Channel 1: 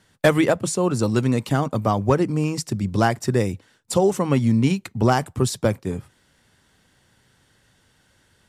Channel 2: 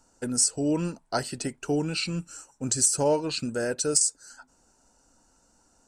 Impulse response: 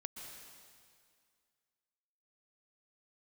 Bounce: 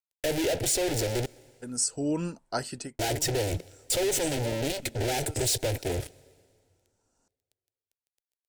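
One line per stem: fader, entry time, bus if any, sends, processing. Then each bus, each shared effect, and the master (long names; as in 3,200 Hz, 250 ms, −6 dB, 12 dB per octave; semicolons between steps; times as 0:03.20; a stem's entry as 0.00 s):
−11.0 dB, 0.00 s, muted 0:01.26–0:02.99, send −16 dB, fuzz pedal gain 43 dB, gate −50 dBFS; phaser with its sweep stopped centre 470 Hz, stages 4
−3.0 dB, 1.40 s, no send, automatic ducking −14 dB, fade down 0.20 s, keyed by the first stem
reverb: on, RT60 2.1 s, pre-delay 113 ms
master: no processing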